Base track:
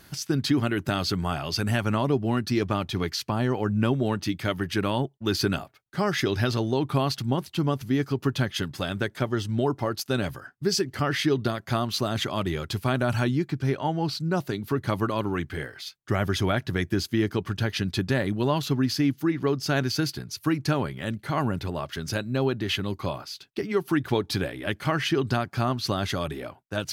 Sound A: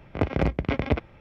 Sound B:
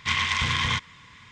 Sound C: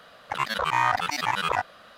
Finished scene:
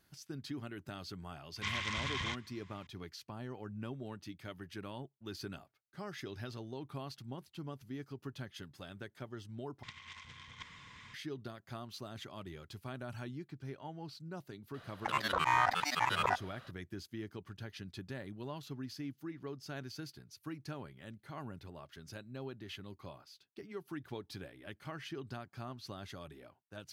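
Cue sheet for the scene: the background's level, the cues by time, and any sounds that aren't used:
base track -19.5 dB
1.56 s: add B -13 dB
9.83 s: replace with B -15 dB + compressor with a negative ratio -33 dBFS, ratio -0.5
14.74 s: add C -6.5 dB
not used: A

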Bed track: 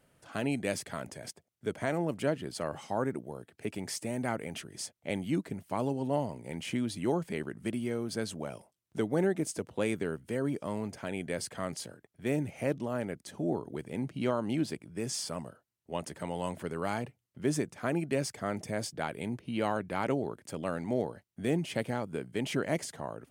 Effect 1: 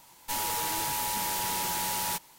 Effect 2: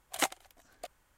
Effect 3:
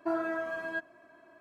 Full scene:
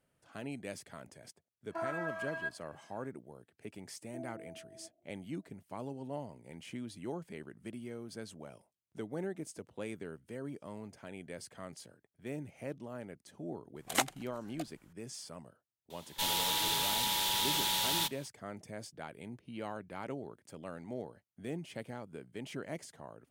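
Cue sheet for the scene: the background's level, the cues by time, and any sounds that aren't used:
bed track -10.5 dB
1.69 s: add 3 -2.5 dB + high-pass 710 Hz
4.08 s: add 3 -15.5 dB + elliptic low-pass 730 Hz
13.76 s: add 2
15.90 s: add 1 -4.5 dB + peaking EQ 3.5 kHz +14.5 dB 0.6 oct

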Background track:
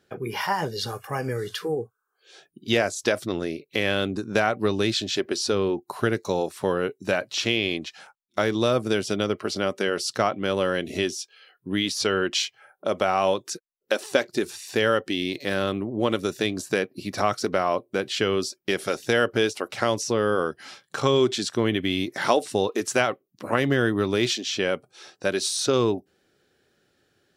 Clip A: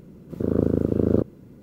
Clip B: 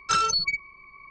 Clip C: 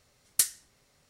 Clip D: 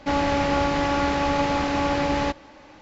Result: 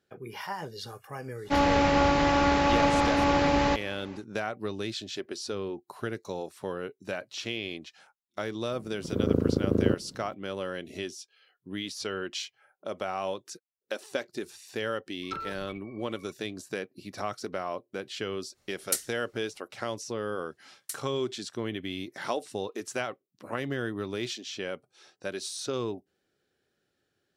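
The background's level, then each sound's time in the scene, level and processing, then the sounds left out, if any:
background track -10.5 dB
1.44 s: add D -0.5 dB, fades 0.10 s
8.72 s: add A -4 dB
15.22 s: add B -8 dB + low-pass that closes with the level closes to 980 Hz, closed at -23.5 dBFS
18.53 s: add C -4 dB, fades 0.05 s
20.50 s: add C -14 dB + Bessel high-pass 910 Hz

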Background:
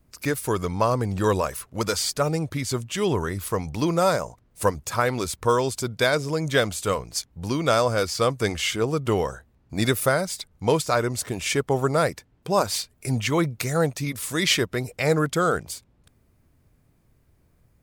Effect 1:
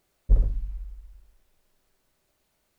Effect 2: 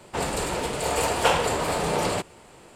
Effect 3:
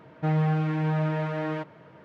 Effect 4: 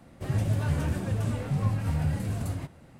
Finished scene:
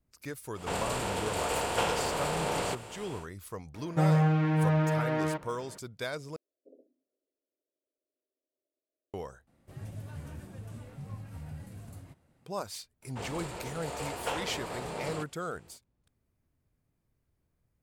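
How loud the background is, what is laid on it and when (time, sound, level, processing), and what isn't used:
background -15 dB
0.53 s: add 2 -10 dB, fades 0.10 s + spectral levelling over time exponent 0.6
3.74 s: add 3
6.36 s: replace with 1 -13 dB + Chebyshev band-pass 260–650 Hz, order 4
9.47 s: replace with 4 -15.5 dB + treble shelf 10 kHz +7 dB
13.02 s: add 2 -13 dB + peaking EQ 12 kHz -2.5 dB 1.9 oct

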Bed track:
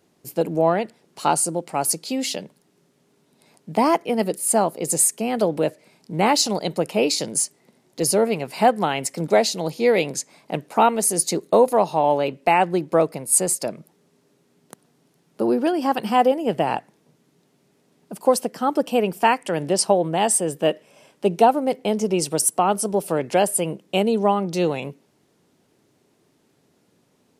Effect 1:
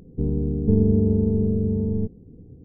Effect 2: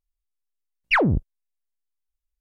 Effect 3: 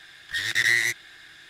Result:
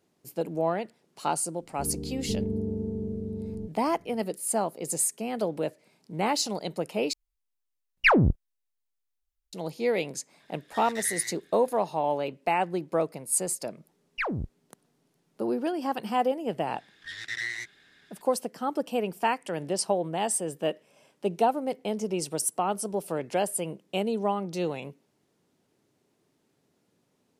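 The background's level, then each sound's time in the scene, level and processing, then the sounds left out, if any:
bed track -8.5 dB
1.61 s: add 1 -8 dB + bass shelf 130 Hz -10.5 dB
7.13 s: replace with 2 -0.5 dB
10.40 s: add 3 -16 dB
13.27 s: add 2 -11.5 dB
16.73 s: add 3 -12 dB + low-pass 7.7 kHz

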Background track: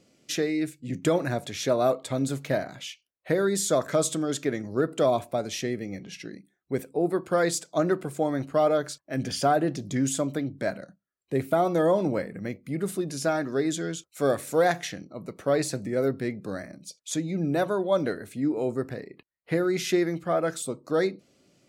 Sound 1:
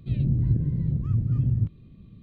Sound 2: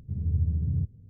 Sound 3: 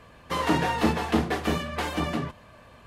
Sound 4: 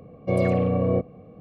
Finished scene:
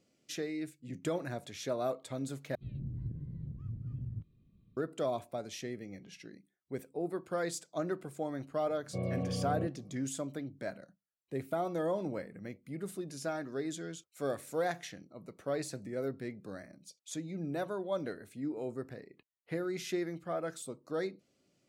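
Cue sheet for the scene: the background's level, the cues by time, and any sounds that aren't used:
background track -11 dB
2.55 s: replace with 1 -17 dB + short-mantissa float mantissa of 8-bit
8.66 s: add 4 -16.5 dB + peaking EQ 140 Hz +9 dB 0.71 oct
not used: 2, 3

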